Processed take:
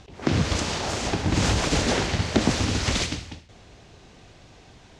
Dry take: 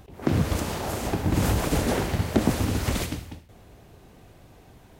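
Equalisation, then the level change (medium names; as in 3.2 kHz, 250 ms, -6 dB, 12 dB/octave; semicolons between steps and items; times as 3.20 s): low-pass 6.6 kHz 24 dB/octave; treble shelf 2 kHz +11 dB; 0.0 dB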